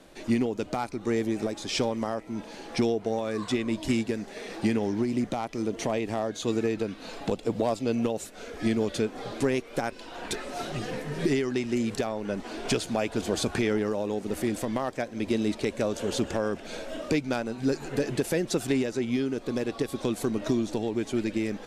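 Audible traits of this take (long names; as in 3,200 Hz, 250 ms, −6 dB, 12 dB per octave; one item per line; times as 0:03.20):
background noise floor −45 dBFS
spectral slope −5.5 dB per octave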